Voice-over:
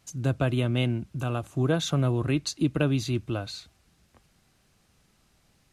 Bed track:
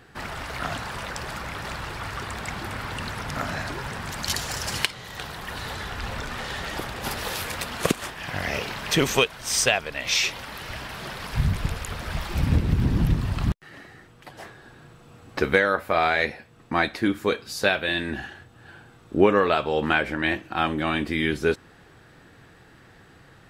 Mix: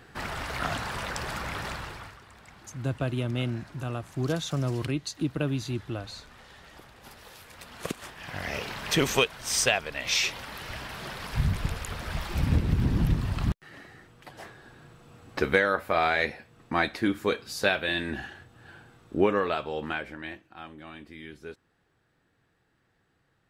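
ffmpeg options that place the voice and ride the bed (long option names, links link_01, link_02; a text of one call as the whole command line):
ffmpeg -i stem1.wav -i stem2.wav -filter_complex "[0:a]adelay=2600,volume=-4dB[link_01];[1:a]volume=15.5dB,afade=type=out:start_time=1.59:duration=0.59:silence=0.11885,afade=type=in:start_time=7.48:duration=1.45:silence=0.158489,afade=type=out:start_time=18.74:duration=1.77:silence=0.149624[link_02];[link_01][link_02]amix=inputs=2:normalize=0" out.wav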